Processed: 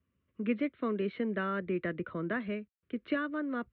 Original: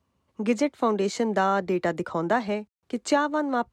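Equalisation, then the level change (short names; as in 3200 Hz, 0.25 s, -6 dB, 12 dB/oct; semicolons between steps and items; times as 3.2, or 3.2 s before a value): steep low-pass 4500 Hz 72 dB/oct; air absorption 64 m; fixed phaser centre 2000 Hz, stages 4; -5.0 dB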